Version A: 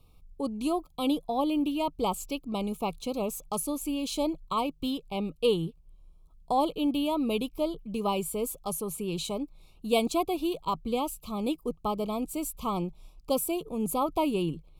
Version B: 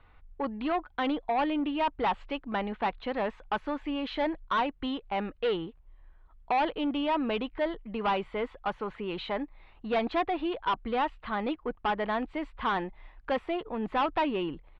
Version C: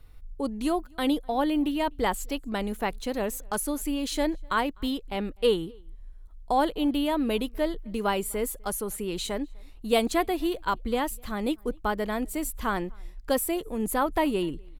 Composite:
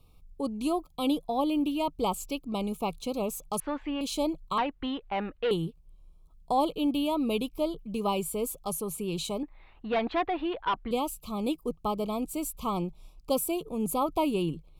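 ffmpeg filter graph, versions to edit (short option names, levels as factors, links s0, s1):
-filter_complex "[1:a]asplit=3[s0][s1][s2];[0:a]asplit=4[s3][s4][s5][s6];[s3]atrim=end=3.602[s7];[s0]atrim=start=3.598:end=4.012[s8];[s4]atrim=start=4.008:end=4.582[s9];[s1]atrim=start=4.578:end=5.512[s10];[s5]atrim=start=5.508:end=9.432[s11];[s2]atrim=start=9.428:end=10.912[s12];[s6]atrim=start=10.908[s13];[s7][s8]acrossfade=d=0.004:c1=hsin:c2=hsin[s14];[s14][s9]acrossfade=d=0.004:c1=hsin:c2=hsin[s15];[s15][s10]acrossfade=d=0.004:c1=hsin:c2=hsin[s16];[s16][s11]acrossfade=d=0.004:c1=hsin:c2=hsin[s17];[s17][s12]acrossfade=d=0.004:c1=hsin:c2=hsin[s18];[s18][s13]acrossfade=d=0.004:c1=hsin:c2=hsin"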